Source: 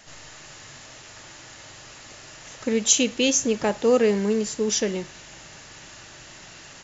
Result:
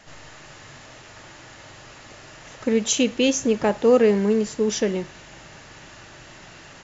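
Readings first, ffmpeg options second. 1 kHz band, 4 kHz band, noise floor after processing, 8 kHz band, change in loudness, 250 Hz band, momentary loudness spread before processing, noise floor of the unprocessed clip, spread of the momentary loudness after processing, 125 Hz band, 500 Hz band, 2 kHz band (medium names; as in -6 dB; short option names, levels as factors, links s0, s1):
+2.5 dB, -2.0 dB, -45 dBFS, no reading, +1.0 dB, +3.0 dB, 22 LU, -45 dBFS, 10 LU, +3.0 dB, +3.0 dB, +0.5 dB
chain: -af "highshelf=f=3900:g=-11,volume=1.41"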